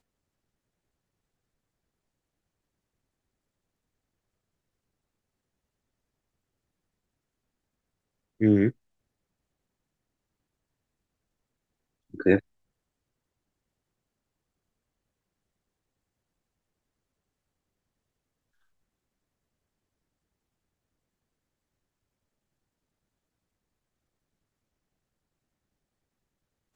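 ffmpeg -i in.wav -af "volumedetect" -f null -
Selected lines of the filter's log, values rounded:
mean_volume: -37.7 dB
max_volume: -6.5 dB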